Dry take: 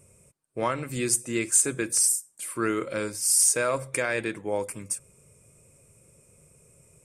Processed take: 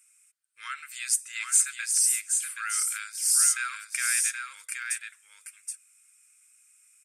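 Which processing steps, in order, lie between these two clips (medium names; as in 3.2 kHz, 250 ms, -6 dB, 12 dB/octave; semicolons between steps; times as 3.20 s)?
elliptic high-pass 1.4 kHz, stop band 50 dB; on a send: delay 774 ms -5 dB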